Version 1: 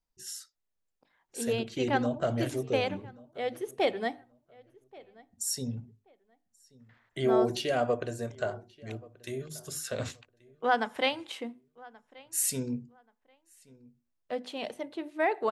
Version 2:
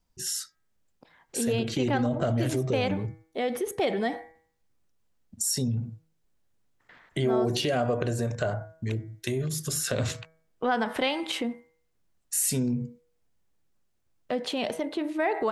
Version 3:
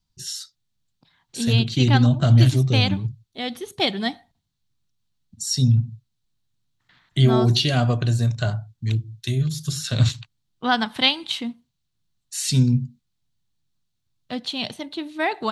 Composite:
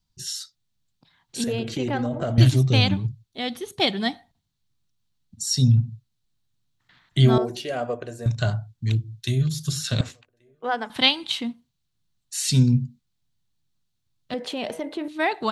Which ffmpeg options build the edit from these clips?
-filter_complex "[1:a]asplit=2[s0][s1];[0:a]asplit=2[s2][s3];[2:a]asplit=5[s4][s5][s6][s7][s8];[s4]atrim=end=1.442[s9];[s0]atrim=start=1.438:end=2.382[s10];[s5]atrim=start=2.378:end=7.382[s11];[s2]atrim=start=7.378:end=8.262[s12];[s6]atrim=start=8.258:end=10.012[s13];[s3]atrim=start=10.008:end=10.902[s14];[s7]atrim=start=10.898:end=14.342[s15];[s1]atrim=start=14.338:end=15.082[s16];[s8]atrim=start=15.078[s17];[s9][s10]acrossfade=d=0.004:c1=hsin:c2=hsin[s18];[s18][s11]acrossfade=d=0.004:c1=hsin:c2=hsin[s19];[s19][s12]acrossfade=d=0.004:c1=hsin:c2=hsin[s20];[s20][s13]acrossfade=d=0.004:c1=hsin:c2=hsin[s21];[s21][s14]acrossfade=d=0.004:c1=hsin:c2=hsin[s22];[s22][s15]acrossfade=d=0.004:c1=hsin:c2=hsin[s23];[s23][s16]acrossfade=d=0.004:c1=hsin:c2=hsin[s24];[s24][s17]acrossfade=d=0.004:c1=hsin:c2=hsin"

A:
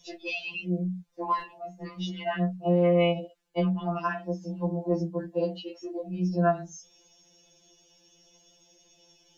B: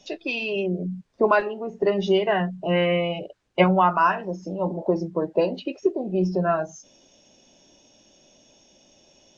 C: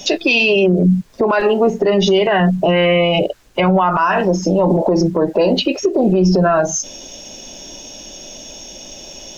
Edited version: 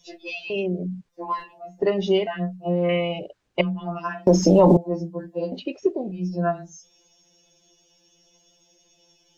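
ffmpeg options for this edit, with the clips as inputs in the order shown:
-filter_complex "[1:a]asplit=4[s0][s1][s2][s3];[0:a]asplit=6[s4][s5][s6][s7][s8][s9];[s4]atrim=end=0.502[s10];[s0]atrim=start=0.498:end=1.092[s11];[s5]atrim=start=1.088:end=1.802[s12];[s1]atrim=start=1.798:end=2.272[s13];[s6]atrim=start=2.268:end=2.892[s14];[s2]atrim=start=2.888:end=3.612[s15];[s7]atrim=start=3.608:end=4.272[s16];[2:a]atrim=start=4.268:end=4.772[s17];[s8]atrim=start=4.768:end=5.522[s18];[s3]atrim=start=5.518:end=6.122[s19];[s9]atrim=start=6.118[s20];[s10][s11]acrossfade=d=0.004:c1=hsin:c2=hsin[s21];[s21][s12]acrossfade=d=0.004:c1=hsin:c2=hsin[s22];[s22][s13]acrossfade=d=0.004:c1=hsin:c2=hsin[s23];[s23][s14]acrossfade=d=0.004:c1=hsin:c2=hsin[s24];[s24][s15]acrossfade=d=0.004:c1=hsin:c2=hsin[s25];[s25][s16]acrossfade=d=0.004:c1=hsin:c2=hsin[s26];[s26][s17]acrossfade=d=0.004:c1=hsin:c2=hsin[s27];[s27][s18]acrossfade=d=0.004:c1=hsin:c2=hsin[s28];[s28][s19]acrossfade=d=0.004:c1=hsin:c2=hsin[s29];[s29][s20]acrossfade=d=0.004:c1=hsin:c2=hsin"

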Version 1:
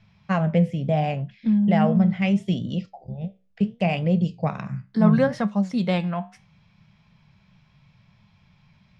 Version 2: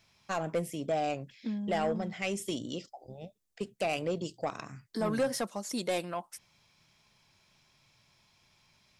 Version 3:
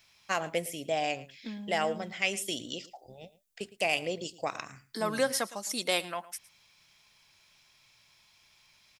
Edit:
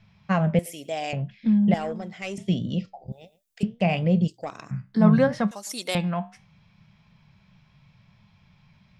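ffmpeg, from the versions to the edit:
-filter_complex "[2:a]asplit=3[s0][s1][s2];[1:a]asplit=2[s3][s4];[0:a]asplit=6[s5][s6][s7][s8][s9][s10];[s5]atrim=end=0.592[s11];[s0]atrim=start=0.588:end=1.132[s12];[s6]atrim=start=1.128:end=1.742[s13];[s3]atrim=start=1.738:end=2.382[s14];[s7]atrim=start=2.378:end=3.122[s15];[s1]atrim=start=3.118:end=3.632[s16];[s8]atrim=start=3.628:end=4.282[s17];[s4]atrim=start=4.278:end=4.712[s18];[s9]atrim=start=4.708:end=5.512[s19];[s2]atrim=start=5.508:end=5.952[s20];[s10]atrim=start=5.948[s21];[s11][s12]acrossfade=d=0.004:c1=hsin:c2=hsin[s22];[s22][s13]acrossfade=d=0.004:c1=hsin:c2=hsin[s23];[s23][s14]acrossfade=d=0.004:c1=hsin:c2=hsin[s24];[s24][s15]acrossfade=d=0.004:c1=hsin:c2=hsin[s25];[s25][s16]acrossfade=d=0.004:c1=hsin:c2=hsin[s26];[s26][s17]acrossfade=d=0.004:c1=hsin:c2=hsin[s27];[s27][s18]acrossfade=d=0.004:c1=hsin:c2=hsin[s28];[s28][s19]acrossfade=d=0.004:c1=hsin:c2=hsin[s29];[s29][s20]acrossfade=d=0.004:c1=hsin:c2=hsin[s30];[s30][s21]acrossfade=d=0.004:c1=hsin:c2=hsin"

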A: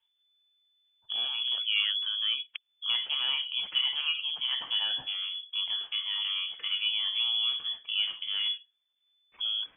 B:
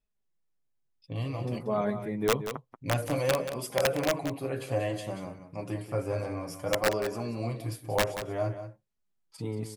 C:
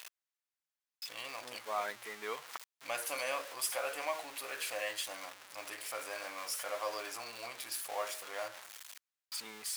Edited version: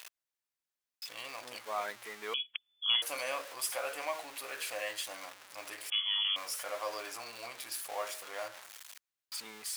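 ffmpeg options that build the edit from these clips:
-filter_complex "[0:a]asplit=2[s0][s1];[2:a]asplit=3[s2][s3][s4];[s2]atrim=end=2.342[s5];[s0]atrim=start=2.338:end=3.022[s6];[s3]atrim=start=3.018:end=5.902[s7];[s1]atrim=start=5.898:end=6.362[s8];[s4]atrim=start=6.358[s9];[s5][s6]acrossfade=d=0.004:c1=hsin:c2=hsin[s10];[s10][s7]acrossfade=d=0.004:c1=hsin:c2=hsin[s11];[s11][s8]acrossfade=d=0.004:c1=hsin:c2=hsin[s12];[s12][s9]acrossfade=d=0.004:c1=hsin:c2=hsin"

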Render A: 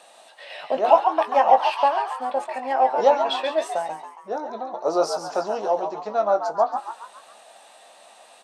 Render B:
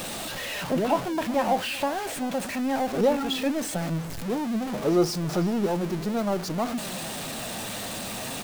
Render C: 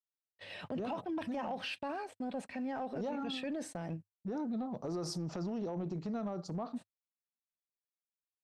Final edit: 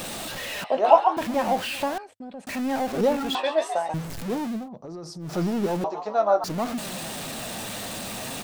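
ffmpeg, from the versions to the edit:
-filter_complex "[0:a]asplit=3[s0][s1][s2];[2:a]asplit=2[s3][s4];[1:a]asplit=6[s5][s6][s7][s8][s9][s10];[s5]atrim=end=0.642[s11];[s0]atrim=start=0.638:end=1.172[s12];[s6]atrim=start=1.168:end=1.982[s13];[s3]atrim=start=1.978:end=2.472[s14];[s7]atrim=start=2.468:end=3.352[s15];[s1]atrim=start=3.348:end=3.942[s16];[s8]atrim=start=3.938:end=4.69[s17];[s4]atrim=start=4.45:end=5.43[s18];[s9]atrim=start=5.19:end=5.842[s19];[s2]atrim=start=5.838:end=6.442[s20];[s10]atrim=start=6.438[s21];[s11][s12]acrossfade=d=0.004:c1=hsin:c2=hsin[s22];[s22][s13]acrossfade=d=0.004:c1=hsin:c2=hsin[s23];[s23][s14]acrossfade=d=0.004:c1=hsin:c2=hsin[s24];[s24][s15]acrossfade=d=0.004:c1=hsin:c2=hsin[s25];[s25][s16]acrossfade=d=0.004:c1=hsin:c2=hsin[s26];[s26][s17]acrossfade=d=0.004:c1=hsin:c2=hsin[s27];[s27][s18]acrossfade=d=0.24:c1=tri:c2=tri[s28];[s28][s19]acrossfade=d=0.24:c1=tri:c2=tri[s29];[s29][s20]acrossfade=d=0.004:c1=hsin:c2=hsin[s30];[s30][s21]acrossfade=d=0.004:c1=hsin:c2=hsin"

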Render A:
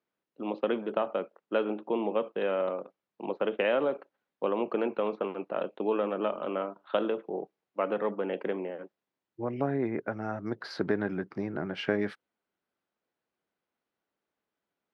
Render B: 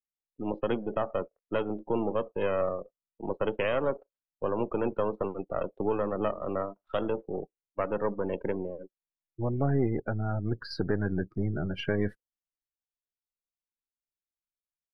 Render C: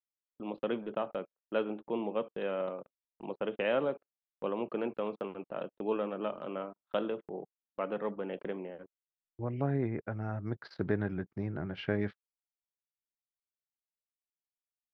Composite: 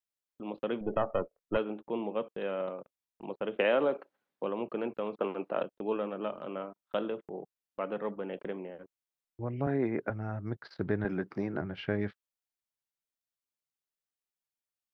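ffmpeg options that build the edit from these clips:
-filter_complex "[0:a]asplit=4[s0][s1][s2][s3];[2:a]asplit=6[s4][s5][s6][s7][s8][s9];[s4]atrim=end=0.812[s10];[1:a]atrim=start=0.808:end=1.572[s11];[s5]atrim=start=1.568:end=3.562[s12];[s0]atrim=start=3.558:end=4.442[s13];[s6]atrim=start=4.438:end=5.192[s14];[s1]atrim=start=5.188:end=5.632[s15];[s7]atrim=start=5.628:end=9.672[s16];[s2]atrim=start=9.668:end=10.102[s17];[s8]atrim=start=10.098:end=11.052[s18];[s3]atrim=start=11.048:end=11.612[s19];[s9]atrim=start=11.608[s20];[s10][s11]acrossfade=d=0.004:c1=hsin:c2=hsin[s21];[s21][s12]acrossfade=d=0.004:c1=hsin:c2=hsin[s22];[s22][s13]acrossfade=d=0.004:c1=hsin:c2=hsin[s23];[s23][s14]acrossfade=d=0.004:c1=hsin:c2=hsin[s24];[s24][s15]acrossfade=d=0.004:c1=hsin:c2=hsin[s25];[s25][s16]acrossfade=d=0.004:c1=hsin:c2=hsin[s26];[s26][s17]acrossfade=d=0.004:c1=hsin:c2=hsin[s27];[s27][s18]acrossfade=d=0.004:c1=hsin:c2=hsin[s28];[s28][s19]acrossfade=d=0.004:c1=hsin:c2=hsin[s29];[s29][s20]acrossfade=d=0.004:c1=hsin:c2=hsin"

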